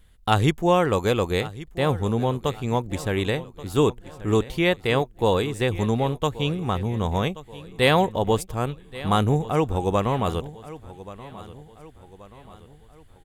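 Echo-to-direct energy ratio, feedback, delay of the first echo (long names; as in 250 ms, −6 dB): −16.0 dB, 45%, 1,130 ms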